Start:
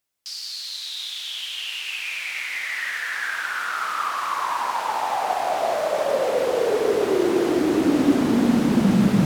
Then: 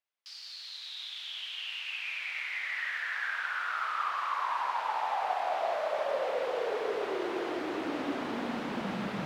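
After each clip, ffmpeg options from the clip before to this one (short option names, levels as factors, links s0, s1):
-filter_complex "[0:a]acrossover=split=510 4200:gain=0.2 1 0.158[s0][s1][s2];[s0][s1][s2]amix=inputs=3:normalize=0,volume=0.473"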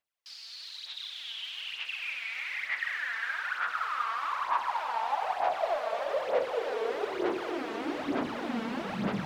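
-af "aphaser=in_gain=1:out_gain=1:delay=4.5:decay=0.58:speed=1.1:type=sinusoidal,volume=0.841"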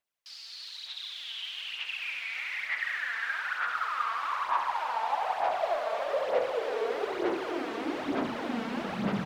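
-af "aecho=1:1:71:0.422"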